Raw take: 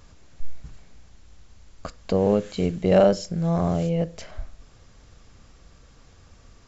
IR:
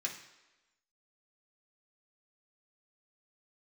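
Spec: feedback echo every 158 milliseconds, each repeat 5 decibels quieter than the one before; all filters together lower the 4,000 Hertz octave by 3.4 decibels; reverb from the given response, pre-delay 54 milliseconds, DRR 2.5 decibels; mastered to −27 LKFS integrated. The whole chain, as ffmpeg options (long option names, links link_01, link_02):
-filter_complex "[0:a]equalizer=frequency=4000:width_type=o:gain=-5,aecho=1:1:158|316|474|632|790|948|1106:0.562|0.315|0.176|0.0988|0.0553|0.031|0.0173,asplit=2[link_01][link_02];[1:a]atrim=start_sample=2205,adelay=54[link_03];[link_02][link_03]afir=irnorm=-1:irlink=0,volume=-4dB[link_04];[link_01][link_04]amix=inputs=2:normalize=0,volume=-6dB"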